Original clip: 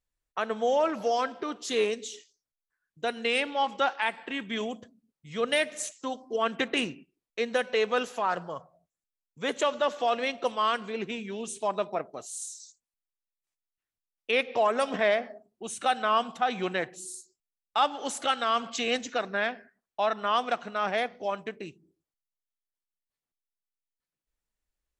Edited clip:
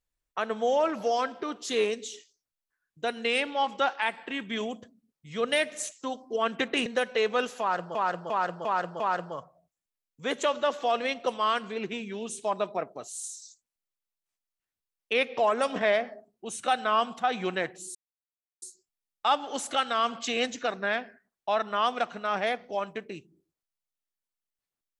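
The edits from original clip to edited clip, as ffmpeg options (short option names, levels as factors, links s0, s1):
-filter_complex "[0:a]asplit=7[s0][s1][s2][s3][s4][s5][s6];[s0]atrim=end=6.862[s7];[s1]atrim=start=7.438:end=8.532[s8];[s2]atrim=start=8.178:end=8.532[s9];[s3]atrim=start=8.178:end=8.532[s10];[s4]atrim=start=8.178:end=8.532[s11];[s5]atrim=start=8.178:end=17.13,asetpts=PTS-STARTPTS,afade=t=out:st=8.948:d=0.004:c=hsin,apad=pad_dur=0.67[s12];[s6]atrim=start=17.13,asetpts=PTS-STARTPTS,afade=t=in:d=0.004:c=hsin[s13];[s7][s8]acrossfade=d=0.004:c1=hsin:c2=hsin[s14];[s14][s9]acrossfade=d=0.004:c1=hsin:c2=hsin[s15];[s15][s10]acrossfade=d=0.004:c1=hsin:c2=hsin[s16];[s16][s11]acrossfade=d=0.004:c1=hsin:c2=hsin[s17];[s12][s13]concat=n=2:v=0:a=1[s18];[s17][s18]acrossfade=d=0.004:c1=hsin:c2=hsin"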